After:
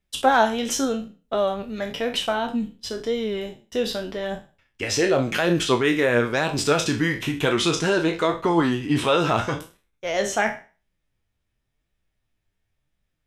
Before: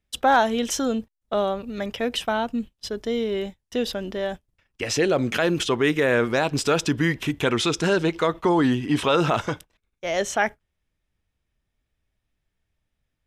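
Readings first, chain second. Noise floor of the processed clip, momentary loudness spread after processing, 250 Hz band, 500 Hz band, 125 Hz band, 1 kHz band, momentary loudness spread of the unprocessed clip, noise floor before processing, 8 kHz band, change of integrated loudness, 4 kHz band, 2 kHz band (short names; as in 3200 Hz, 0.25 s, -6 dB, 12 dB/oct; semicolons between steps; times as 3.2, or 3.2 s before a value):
-77 dBFS, 11 LU, 0.0 dB, +0.5 dB, 0.0 dB, +0.5 dB, 10 LU, -79 dBFS, +2.0 dB, +0.5 dB, +1.5 dB, +1.0 dB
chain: spectral trails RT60 0.35 s; flange 0.92 Hz, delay 4.9 ms, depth 5.4 ms, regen +53%; gain +3.5 dB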